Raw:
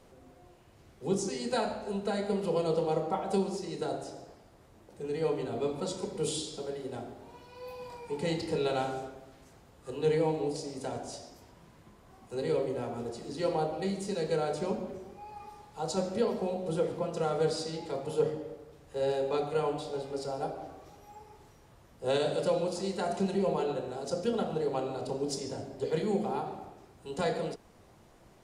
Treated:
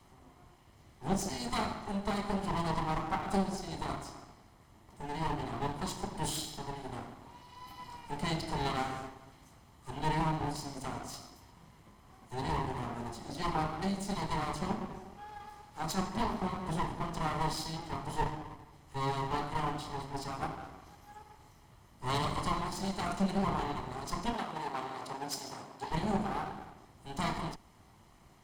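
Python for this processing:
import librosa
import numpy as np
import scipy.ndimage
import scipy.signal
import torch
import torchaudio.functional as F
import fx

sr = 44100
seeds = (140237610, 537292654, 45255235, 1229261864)

y = fx.lower_of_two(x, sr, delay_ms=0.97)
y = fx.highpass(y, sr, hz=460.0, slope=6, at=(24.33, 25.91))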